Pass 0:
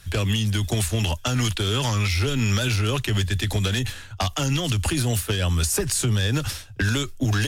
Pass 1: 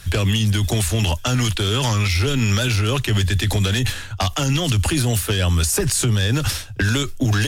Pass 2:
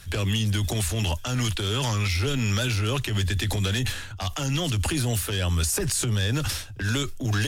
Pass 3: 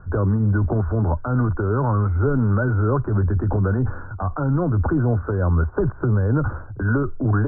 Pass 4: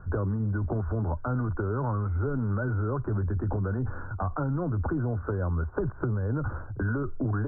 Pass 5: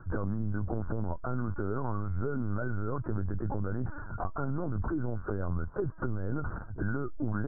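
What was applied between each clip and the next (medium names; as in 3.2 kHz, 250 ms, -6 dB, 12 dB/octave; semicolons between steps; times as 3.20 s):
peak limiter -19 dBFS, peak gain reduction 6 dB; trim +8 dB
transient shaper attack -8 dB, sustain +2 dB; trim -5.5 dB
rippled Chebyshev low-pass 1.5 kHz, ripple 3 dB; trim +8.5 dB
compression 5:1, threshold -23 dBFS, peak gain reduction 8 dB; trim -2.5 dB
LPC vocoder at 8 kHz pitch kept; trim -3 dB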